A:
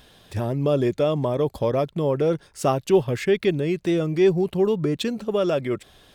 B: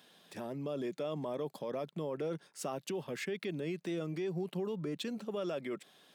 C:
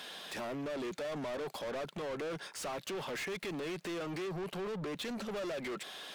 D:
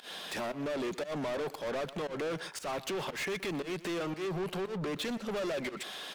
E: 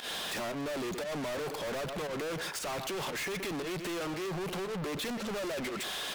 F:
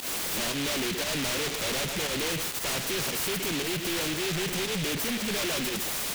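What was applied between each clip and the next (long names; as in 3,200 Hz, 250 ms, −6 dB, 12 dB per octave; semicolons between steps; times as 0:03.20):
brickwall limiter −19.5 dBFS, peak gain reduction 12 dB; Butterworth high-pass 160 Hz 36 dB per octave; parametric band 360 Hz −2.5 dB 1.9 octaves; level −8.5 dB
in parallel at −1 dB: brickwall limiter −38 dBFS, peak gain reduction 11 dB; on the sum: mid-hump overdrive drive 28 dB, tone 5,900 Hz, clips at −24.5 dBFS; level −8 dB
fake sidechain pumping 116 BPM, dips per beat 1, −21 dB, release 137 ms; slap from a distant wall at 21 metres, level −16 dB; level +4 dB
leveller curve on the samples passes 5; level −6 dB
short delay modulated by noise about 2,600 Hz, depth 0.34 ms; level +6 dB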